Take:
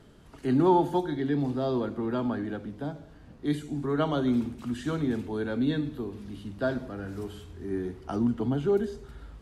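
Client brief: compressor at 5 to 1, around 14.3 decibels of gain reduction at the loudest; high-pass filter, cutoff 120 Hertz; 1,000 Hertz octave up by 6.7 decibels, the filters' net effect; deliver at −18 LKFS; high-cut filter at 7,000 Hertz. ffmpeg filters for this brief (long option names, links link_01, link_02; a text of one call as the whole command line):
ffmpeg -i in.wav -af "highpass=120,lowpass=7000,equalizer=frequency=1000:width_type=o:gain=8,acompressor=threshold=-30dB:ratio=5,volume=17dB" out.wav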